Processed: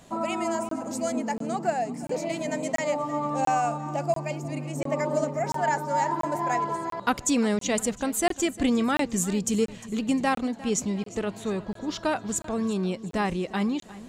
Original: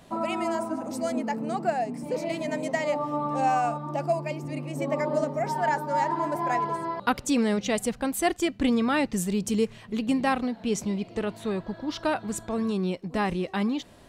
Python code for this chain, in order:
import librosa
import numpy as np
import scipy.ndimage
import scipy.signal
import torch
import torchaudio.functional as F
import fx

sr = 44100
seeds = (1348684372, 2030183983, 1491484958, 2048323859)

p1 = fx.peak_eq(x, sr, hz=7000.0, db=10.0, octaves=0.34)
p2 = p1 + fx.echo_feedback(p1, sr, ms=353, feedback_pct=45, wet_db=-18.0, dry=0)
y = fx.buffer_crackle(p2, sr, first_s=0.69, period_s=0.69, block=1024, kind='zero')